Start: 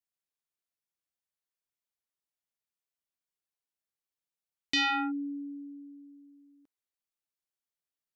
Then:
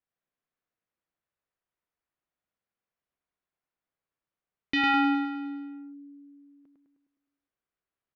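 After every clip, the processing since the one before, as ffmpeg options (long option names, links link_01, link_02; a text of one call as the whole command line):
ffmpeg -i in.wav -filter_complex "[0:a]lowpass=1900,bandreject=frequency=870:width=17,asplit=2[link_01][link_02];[link_02]aecho=0:1:103|206|309|412|515|618|721|824:0.708|0.404|0.23|0.131|0.0747|0.0426|0.0243|0.0138[link_03];[link_01][link_03]amix=inputs=2:normalize=0,volume=6dB" out.wav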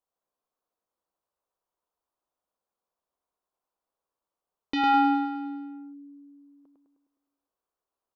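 ffmpeg -i in.wav -af "equalizer=frequency=125:width_type=o:width=1:gain=-8,equalizer=frequency=500:width_type=o:width=1:gain=5,equalizer=frequency=1000:width_type=o:width=1:gain=9,equalizer=frequency=2000:width_type=o:width=1:gain=-11" out.wav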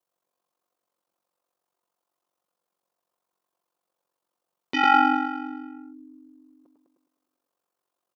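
ffmpeg -i in.wav -af "highpass=150,aecho=1:1:5.7:0.75,aeval=exprs='val(0)*sin(2*PI*23*n/s)':channel_layout=same,volume=6.5dB" out.wav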